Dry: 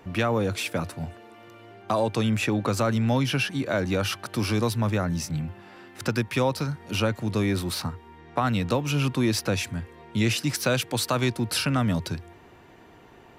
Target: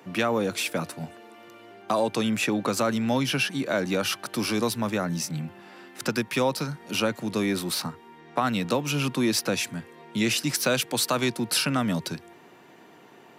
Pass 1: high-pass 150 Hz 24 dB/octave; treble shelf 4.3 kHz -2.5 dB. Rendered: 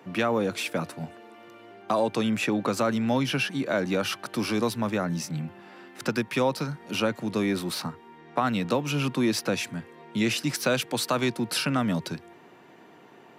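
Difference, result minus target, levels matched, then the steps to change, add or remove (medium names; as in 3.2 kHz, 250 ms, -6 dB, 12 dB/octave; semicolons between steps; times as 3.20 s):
8 kHz band -4.5 dB
change: treble shelf 4.3 kHz +4.5 dB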